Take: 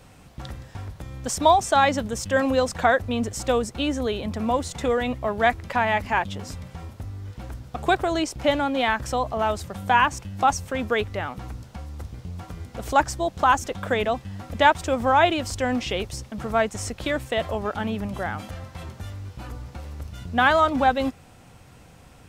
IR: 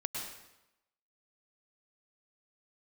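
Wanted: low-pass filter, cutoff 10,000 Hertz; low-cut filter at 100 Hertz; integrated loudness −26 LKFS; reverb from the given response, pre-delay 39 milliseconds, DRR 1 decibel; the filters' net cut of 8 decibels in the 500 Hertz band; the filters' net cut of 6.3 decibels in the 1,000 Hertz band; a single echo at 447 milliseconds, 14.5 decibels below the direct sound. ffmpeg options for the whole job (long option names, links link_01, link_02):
-filter_complex "[0:a]highpass=100,lowpass=10000,equalizer=frequency=500:width_type=o:gain=-8.5,equalizer=frequency=1000:width_type=o:gain=-5,aecho=1:1:447:0.188,asplit=2[link_01][link_02];[1:a]atrim=start_sample=2205,adelay=39[link_03];[link_02][link_03]afir=irnorm=-1:irlink=0,volume=-3.5dB[link_04];[link_01][link_04]amix=inputs=2:normalize=0,volume=-0.5dB"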